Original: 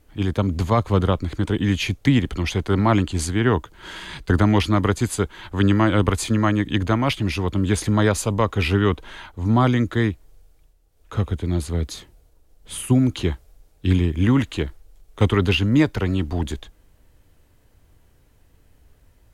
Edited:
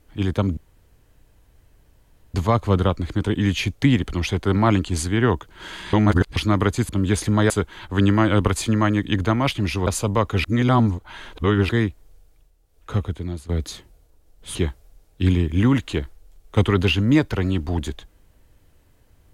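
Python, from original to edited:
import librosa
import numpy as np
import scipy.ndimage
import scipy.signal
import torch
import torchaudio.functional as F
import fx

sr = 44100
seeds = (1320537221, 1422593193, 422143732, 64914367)

y = fx.edit(x, sr, fx.insert_room_tone(at_s=0.57, length_s=1.77),
    fx.reverse_span(start_s=4.16, length_s=0.43),
    fx.move(start_s=7.49, length_s=0.61, to_s=5.12),
    fx.reverse_span(start_s=8.67, length_s=1.25),
    fx.fade_out_to(start_s=11.17, length_s=0.55, floor_db=-14.0),
    fx.cut(start_s=12.78, length_s=0.41), tone=tone)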